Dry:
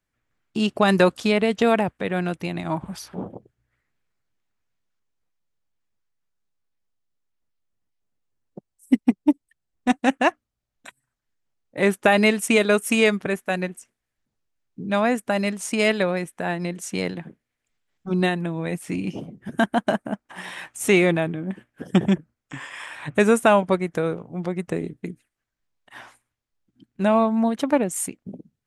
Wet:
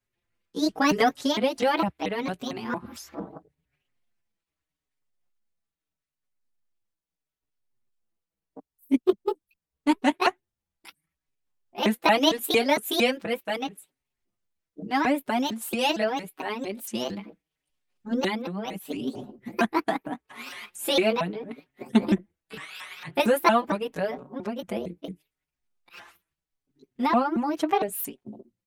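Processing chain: sawtooth pitch modulation +8 st, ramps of 228 ms; endless flanger 5.1 ms -0.78 Hz

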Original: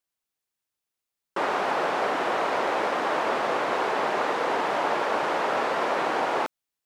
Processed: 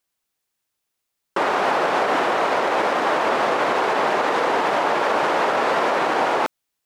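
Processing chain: peak limiter -18.5 dBFS, peak gain reduction 5 dB; trim +7.5 dB

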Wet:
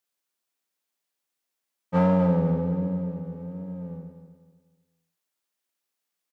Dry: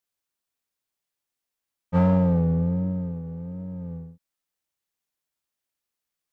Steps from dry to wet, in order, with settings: high-pass 190 Hz 12 dB/octave; feedback delay 248 ms, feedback 34%, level -10 dB; trim +2 dB

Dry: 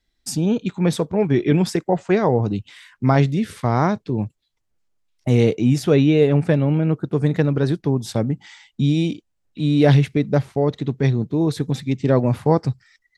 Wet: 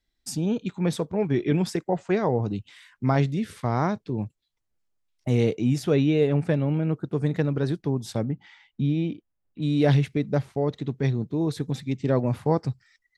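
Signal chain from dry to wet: 8.24–9.61 s: low-pass 3.7 kHz -> 1.7 kHz 12 dB/octave; trim -6 dB

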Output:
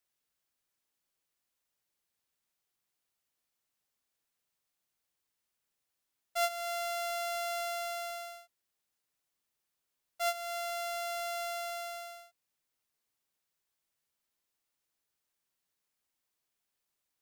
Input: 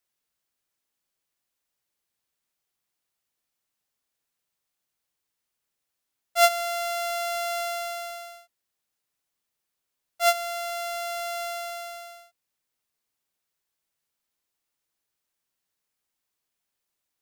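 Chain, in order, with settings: compression 2:1, threshold -34 dBFS, peak gain reduction 11 dB; trim -2.5 dB

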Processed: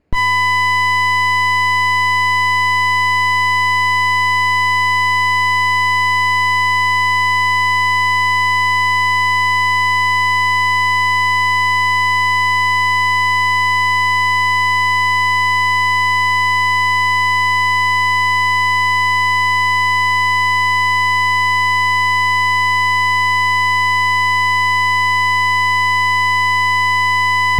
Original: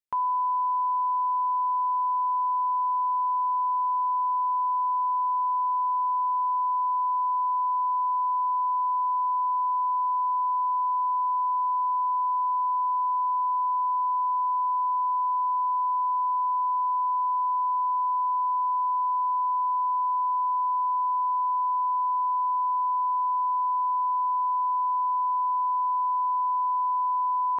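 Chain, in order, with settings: comb filter that takes the minimum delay 0.42 ms; in parallel at -1 dB: Schmitt trigger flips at -37.5 dBFS; on the sum: tilt EQ -6 dB/octave; overdrive pedal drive 34 dB, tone 1 kHz, clips at -16.5 dBFS; loudness maximiser +19.5 dB; trim -6 dB

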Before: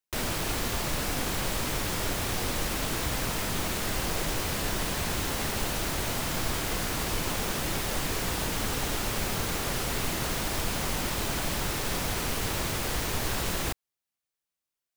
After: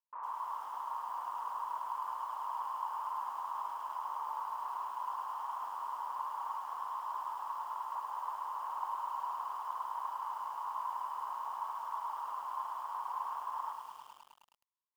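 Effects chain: full-wave rectifier; short-mantissa float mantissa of 6-bit; Butterworth band-pass 1 kHz, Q 4.7; distance through air 330 m; on a send at -9 dB: reverberation RT60 0.65 s, pre-delay 13 ms; on the sum: bit-crushed delay 105 ms, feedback 80%, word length 11-bit, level -8 dB; trim +9 dB

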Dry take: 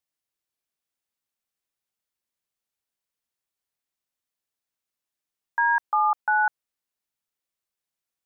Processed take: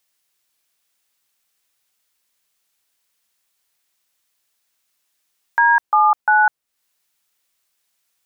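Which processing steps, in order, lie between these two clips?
tape noise reduction on one side only encoder only; trim +7.5 dB

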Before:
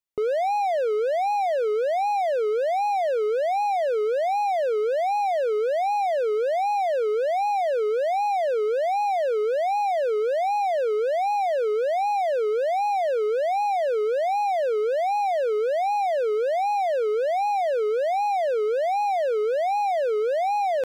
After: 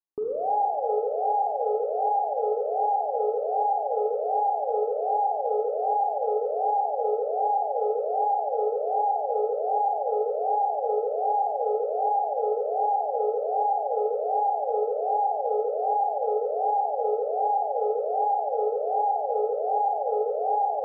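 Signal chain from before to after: rippled Chebyshev low-pass 1.2 kHz, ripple 9 dB; Schroeder reverb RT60 2.1 s, combs from 31 ms, DRR -0.5 dB

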